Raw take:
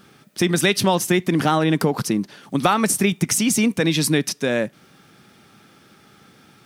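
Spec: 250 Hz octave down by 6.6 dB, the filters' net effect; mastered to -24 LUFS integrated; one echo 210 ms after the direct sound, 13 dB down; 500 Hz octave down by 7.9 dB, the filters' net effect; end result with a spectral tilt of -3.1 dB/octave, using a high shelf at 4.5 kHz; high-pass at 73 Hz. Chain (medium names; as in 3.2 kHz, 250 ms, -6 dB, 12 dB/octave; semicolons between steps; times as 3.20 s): high-pass 73 Hz; peaking EQ 250 Hz -7 dB; peaking EQ 500 Hz -8 dB; treble shelf 4.5 kHz +5 dB; delay 210 ms -13 dB; trim -3.5 dB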